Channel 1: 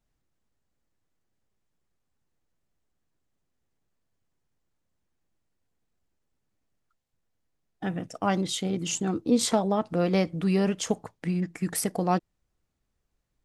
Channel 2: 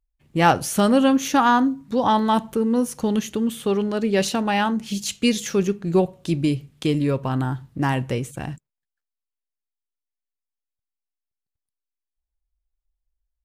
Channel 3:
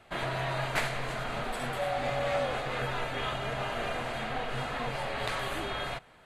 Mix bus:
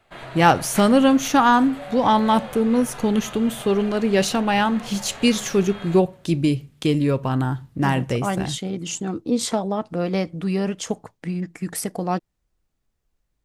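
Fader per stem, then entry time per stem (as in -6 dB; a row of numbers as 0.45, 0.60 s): +1.0, +1.5, -4.5 dB; 0.00, 0.00, 0.00 s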